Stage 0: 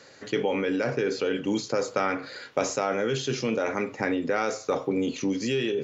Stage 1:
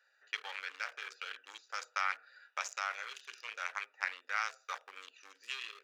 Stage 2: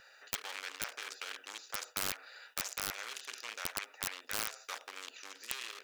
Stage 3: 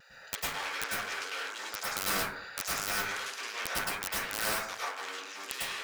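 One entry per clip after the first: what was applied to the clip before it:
adaptive Wiener filter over 41 samples; high-pass filter 1,200 Hz 24 dB per octave
wrap-around overflow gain 24.5 dB; every bin compressed towards the loudest bin 2 to 1; level +11.5 dB
pitch vibrato 0.79 Hz 24 cents; dense smooth reverb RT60 0.66 s, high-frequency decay 0.35×, pre-delay 90 ms, DRR −8 dB

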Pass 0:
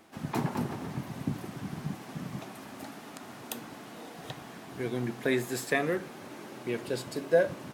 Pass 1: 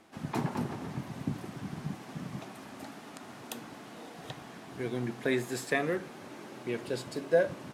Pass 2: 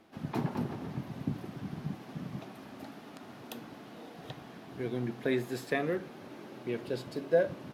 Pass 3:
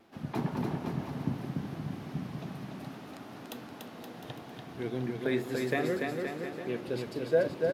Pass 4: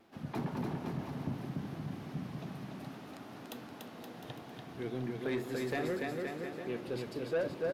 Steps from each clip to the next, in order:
Bessel low-pass filter 11,000 Hz, order 2; level −1.5 dB
octave-band graphic EQ 1,000/2,000/8,000 Hz −3/−3/−11 dB
tape wow and flutter 52 cents; bouncing-ball delay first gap 290 ms, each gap 0.8×, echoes 5
soft clipping −25 dBFS, distortion −13 dB; level −2.5 dB

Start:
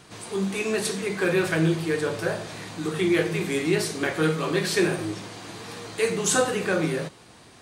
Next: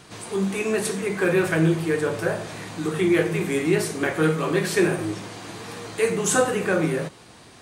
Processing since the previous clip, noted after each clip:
dynamic equaliser 4,300 Hz, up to −7 dB, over −46 dBFS, Q 1.2
level +2.5 dB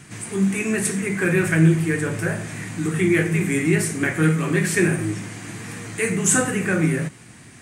graphic EQ with 10 bands 125 Hz +8 dB, 250 Hz +5 dB, 500 Hz −6 dB, 1,000 Hz −5 dB, 2,000 Hz +8 dB, 4,000 Hz −8 dB, 8,000 Hz +8 dB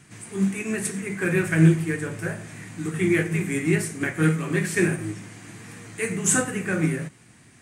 expander for the loud parts 1.5 to 1, over −27 dBFS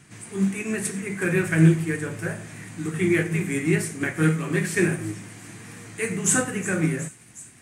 delay with a high-pass on its return 365 ms, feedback 71%, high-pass 5,300 Hz, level −14 dB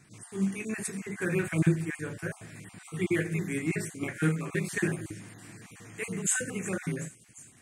time-frequency cells dropped at random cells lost 23%
level −6 dB

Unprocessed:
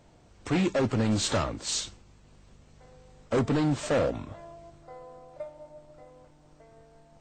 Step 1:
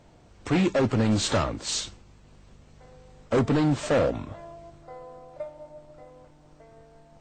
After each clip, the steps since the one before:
high-shelf EQ 7,000 Hz −5 dB
level +3 dB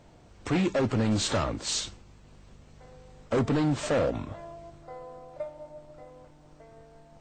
brickwall limiter −20 dBFS, peak gain reduction 3.5 dB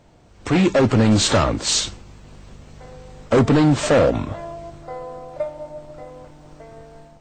automatic gain control gain up to 8.5 dB
level +2 dB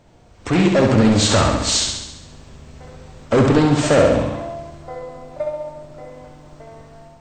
flutter between parallel walls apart 11.6 metres, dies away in 0.93 s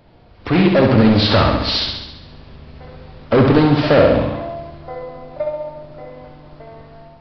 downsampling to 11,025 Hz
level +2 dB

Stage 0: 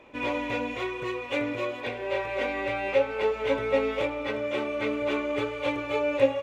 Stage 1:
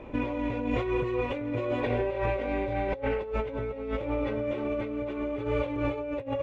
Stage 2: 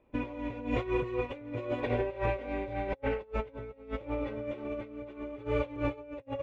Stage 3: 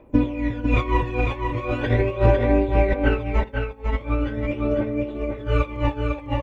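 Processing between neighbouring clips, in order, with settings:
healed spectral selection 0:02.57–0:03.21, 1,100–3,300 Hz both; spectral tilt −3.5 dB per octave; compressor whose output falls as the input rises −31 dBFS, ratio −1
expander for the loud parts 2.5 to 1, over −41 dBFS
phase shifter 0.41 Hz, delay 1.3 ms, feedback 67%; single-tap delay 501 ms −5 dB; on a send at −15 dB: convolution reverb RT60 0.45 s, pre-delay 3 ms; on the sum: level +8 dB

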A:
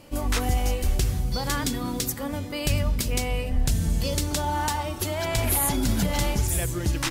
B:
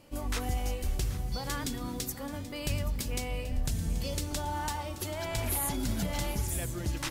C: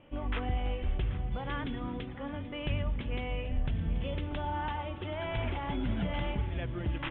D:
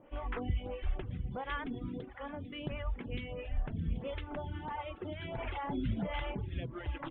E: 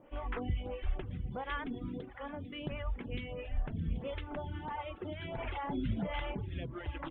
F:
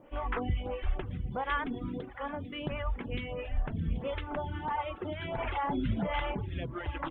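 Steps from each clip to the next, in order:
feedback echo at a low word length 782 ms, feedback 35%, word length 8 bits, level −14.5 dB; level −8 dB
Butterworth low-pass 3,400 Hz 96 dB per octave
reverb reduction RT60 0.76 s; phaser with staggered stages 1.5 Hz; level +1.5 dB
mains-hum notches 60/120 Hz
dynamic equaliser 1,100 Hz, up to +5 dB, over −53 dBFS, Q 0.85; level +3 dB

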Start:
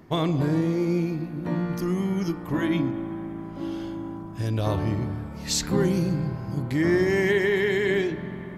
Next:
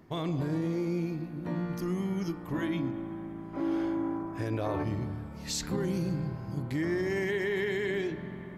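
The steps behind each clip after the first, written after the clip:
gain on a spectral selection 0:03.54–0:04.84, 250–2,600 Hz +9 dB
brickwall limiter −16.5 dBFS, peak gain reduction 9.5 dB
level −6 dB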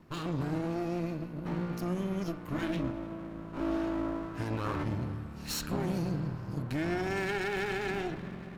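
lower of the sound and its delayed copy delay 0.73 ms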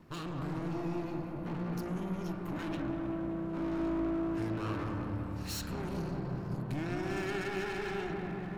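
soft clipping −35 dBFS, distortion −9 dB
delay with a low-pass on its return 194 ms, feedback 62%, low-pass 1,700 Hz, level −3 dB

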